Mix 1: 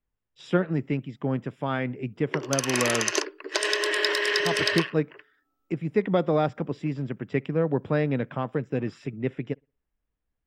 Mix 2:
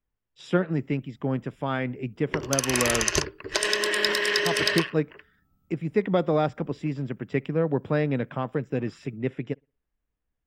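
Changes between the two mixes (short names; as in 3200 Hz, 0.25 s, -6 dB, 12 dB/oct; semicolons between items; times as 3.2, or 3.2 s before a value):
background: remove brick-wall FIR high-pass 260 Hz; master: add high shelf 9500 Hz +8.5 dB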